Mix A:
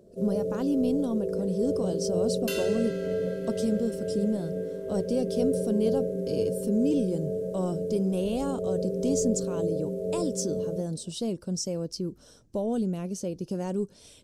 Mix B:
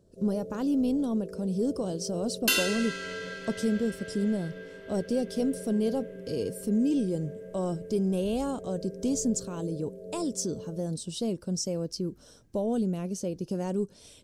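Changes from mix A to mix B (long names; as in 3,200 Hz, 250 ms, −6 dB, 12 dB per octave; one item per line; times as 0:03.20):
first sound −11.5 dB
second sound +10.5 dB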